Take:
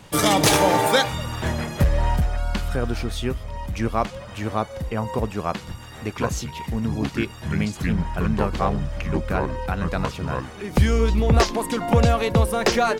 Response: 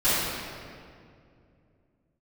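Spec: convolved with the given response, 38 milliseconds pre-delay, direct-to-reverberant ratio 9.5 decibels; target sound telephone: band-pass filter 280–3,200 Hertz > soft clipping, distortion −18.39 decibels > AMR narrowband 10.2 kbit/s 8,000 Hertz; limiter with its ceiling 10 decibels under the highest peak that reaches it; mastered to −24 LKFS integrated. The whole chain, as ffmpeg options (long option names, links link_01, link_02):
-filter_complex "[0:a]alimiter=limit=-17.5dB:level=0:latency=1,asplit=2[link_01][link_02];[1:a]atrim=start_sample=2205,adelay=38[link_03];[link_02][link_03]afir=irnorm=-1:irlink=0,volume=-26dB[link_04];[link_01][link_04]amix=inputs=2:normalize=0,highpass=280,lowpass=3200,asoftclip=threshold=-20.5dB,volume=9dB" -ar 8000 -c:a libopencore_amrnb -b:a 10200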